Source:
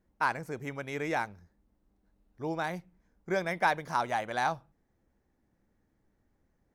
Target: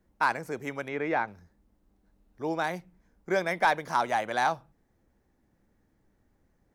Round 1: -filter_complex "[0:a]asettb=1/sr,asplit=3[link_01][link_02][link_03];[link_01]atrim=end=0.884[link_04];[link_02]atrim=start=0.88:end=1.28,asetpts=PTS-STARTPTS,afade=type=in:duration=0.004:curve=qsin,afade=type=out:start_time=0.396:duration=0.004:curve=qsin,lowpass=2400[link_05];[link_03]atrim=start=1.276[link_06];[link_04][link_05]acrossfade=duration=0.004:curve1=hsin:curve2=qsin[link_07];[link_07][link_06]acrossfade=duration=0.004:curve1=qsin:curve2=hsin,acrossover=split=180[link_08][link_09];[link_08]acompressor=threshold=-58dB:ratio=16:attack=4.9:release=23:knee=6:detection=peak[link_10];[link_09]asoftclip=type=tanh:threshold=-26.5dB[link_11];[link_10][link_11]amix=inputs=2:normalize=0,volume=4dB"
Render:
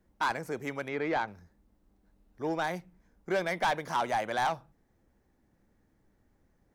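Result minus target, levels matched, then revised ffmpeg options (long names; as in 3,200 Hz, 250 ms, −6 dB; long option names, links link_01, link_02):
soft clipping: distortion +13 dB
-filter_complex "[0:a]asettb=1/sr,asplit=3[link_01][link_02][link_03];[link_01]atrim=end=0.884[link_04];[link_02]atrim=start=0.88:end=1.28,asetpts=PTS-STARTPTS,afade=type=in:duration=0.004:curve=qsin,afade=type=out:start_time=0.396:duration=0.004:curve=qsin,lowpass=2400[link_05];[link_03]atrim=start=1.276[link_06];[link_04][link_05]acrossfade=duration=0.004:curve1=hsin:curve2=qsin[link_07];[link_07][link_06]acrossfade=duration=0.004:curve1=qsin:curve2=hsin,acrossover=split=180[link_08][link_09];[link_08]acompressor=threshold=-58dB:ratio=16:attack=4.9:release=23:knee=6:detection=peak[link_10];[link_09]asoftclip=type=tanh:threshold=-15.5dB[link_11];[link_10][link_11]amix=inputs=2:normalize=0,volume=4dB"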